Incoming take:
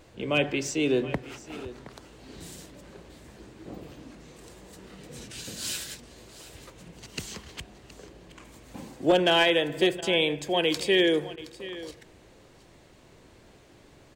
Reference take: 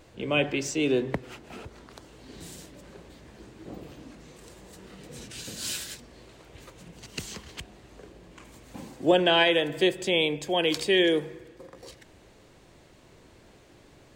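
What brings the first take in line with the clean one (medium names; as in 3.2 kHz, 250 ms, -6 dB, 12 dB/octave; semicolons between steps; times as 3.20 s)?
clip repair -13.5 dBFS; interpolate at 10.01/11.36 s, 13 ms; inverse comb 720 ms -16.5 dB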